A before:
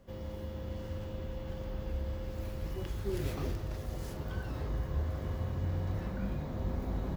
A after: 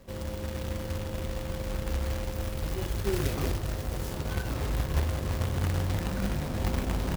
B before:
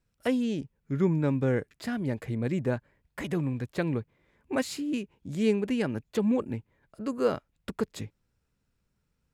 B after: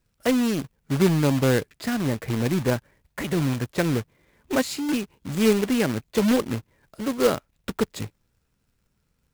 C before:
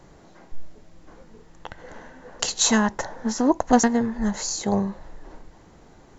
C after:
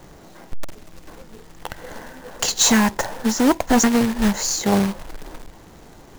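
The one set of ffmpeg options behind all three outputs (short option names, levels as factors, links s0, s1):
-af "acontrast=32,acrusher=bits=2:mode=log:mix=0:aa=0.000001,aeval=exprs='0.473*(abs(mod(val(0)/0.473+3,4)-2)-1)':c=same"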